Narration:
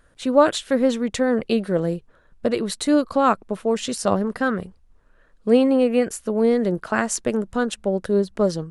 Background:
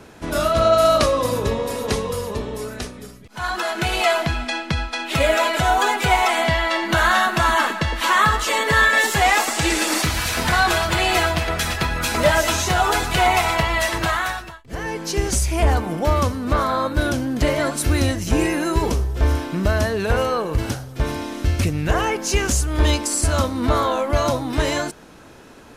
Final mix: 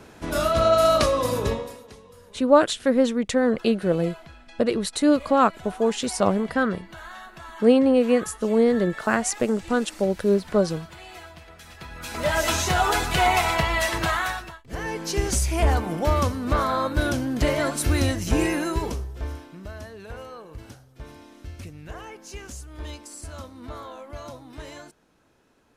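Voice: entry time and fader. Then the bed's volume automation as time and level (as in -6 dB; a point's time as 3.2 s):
2.15 s, -0.5 dB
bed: 1.52 s -3 dB
1.9 s -24 dB
11.62 s -24 dB
12.47 s -3 dB
18.55 s -3 dB
19.6 s -19 dB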